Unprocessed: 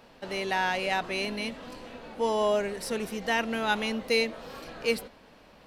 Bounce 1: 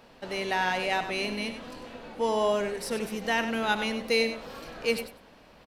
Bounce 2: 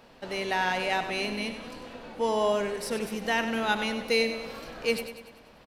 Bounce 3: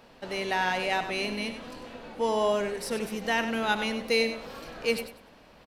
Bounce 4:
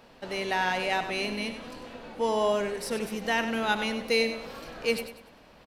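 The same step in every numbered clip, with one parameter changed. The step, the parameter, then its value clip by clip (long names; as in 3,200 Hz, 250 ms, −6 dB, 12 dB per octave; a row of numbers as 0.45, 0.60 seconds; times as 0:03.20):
repeating echo, feedback: 16, 53, 24, 36%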